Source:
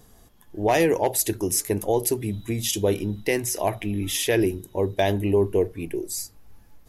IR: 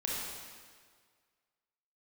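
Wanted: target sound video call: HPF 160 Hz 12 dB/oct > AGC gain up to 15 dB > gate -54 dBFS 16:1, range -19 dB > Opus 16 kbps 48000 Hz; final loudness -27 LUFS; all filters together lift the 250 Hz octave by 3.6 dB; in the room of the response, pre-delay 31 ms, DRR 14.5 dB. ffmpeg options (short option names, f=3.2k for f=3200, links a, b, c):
-filter_complex "[0:a]equalizer=f=250:t=o:g=6,asplit=2[a][b];[1:a]atrim=start_sample=2205,adelay=31[c];[b][c]afir=irnorm=-1:irlink=0,volume=-19.5dB[d];[a][d]amix=inputs=2:normalize=0,highpass=160,dynaudnorm=m=15dB,agate=range=-19dB:threshold=-54dB:ratio=16,volume=-4dB" -ar 48000 -c:a libopus -b:a 16k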